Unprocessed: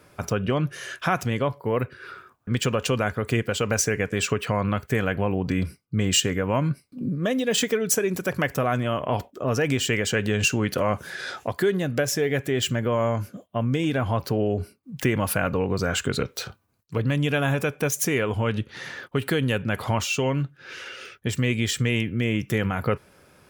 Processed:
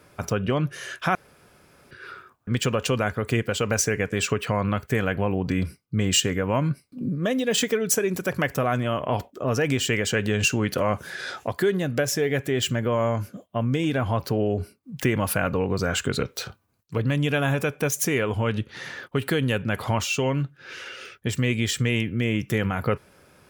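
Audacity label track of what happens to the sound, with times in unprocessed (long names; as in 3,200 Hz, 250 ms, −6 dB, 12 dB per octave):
1.150000	1.910000	fill with room tone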